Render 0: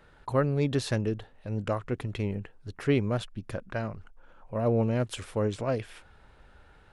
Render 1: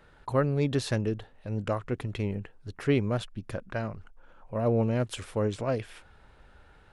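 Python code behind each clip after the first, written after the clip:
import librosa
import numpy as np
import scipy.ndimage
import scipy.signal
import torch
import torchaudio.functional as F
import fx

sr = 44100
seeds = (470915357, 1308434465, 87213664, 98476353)

y = x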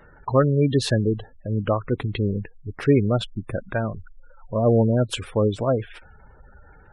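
y = fx.spec_gate(x, sr, threshold_db=-20, keep='strong')
y = fx.dynamic_eq(y, sr, hz=3100.0, q=0.89, threshold_db=-46.0, ratio=4.0, max_db=3)
y = y * librosa.db_to_amplitude(7.5)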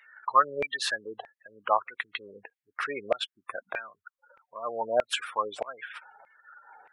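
y = fx.filter_lfo_highpass(x, sr, shape='saw_down', hz=1.6, low_hz=670.0, high_hz=2300.0, q=4.4)
y = y * librosa.db_to_amplitude(-3.5)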